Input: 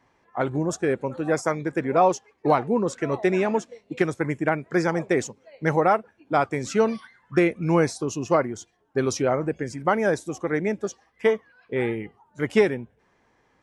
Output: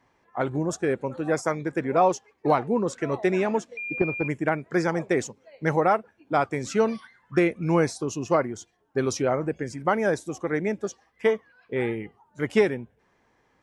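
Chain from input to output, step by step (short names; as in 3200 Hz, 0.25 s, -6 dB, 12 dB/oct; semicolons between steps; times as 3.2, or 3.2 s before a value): 3.77–4.28 pulse-width modulation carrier 2400 Hz; gain -1.5 dB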